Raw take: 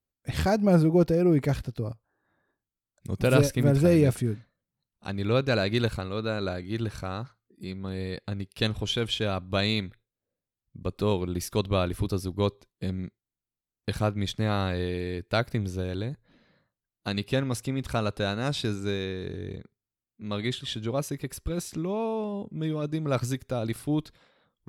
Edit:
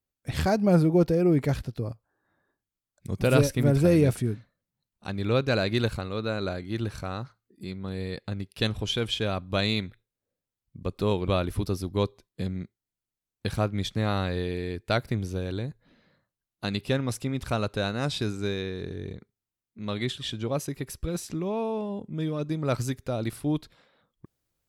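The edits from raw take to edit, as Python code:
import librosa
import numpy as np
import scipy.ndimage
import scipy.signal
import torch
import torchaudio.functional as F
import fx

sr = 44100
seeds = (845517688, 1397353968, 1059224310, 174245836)

y = fx.edit(x, sr, fx.cut(start_s=11.28, length_s=0.43), tone=tone)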